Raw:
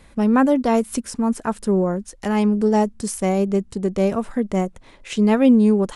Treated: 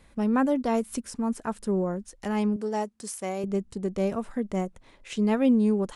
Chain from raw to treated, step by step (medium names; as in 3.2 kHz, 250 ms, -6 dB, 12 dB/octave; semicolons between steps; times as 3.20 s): 2.56–3.44 s: high-pass 490 Hz 6 dB/octave; trim -7.5 dB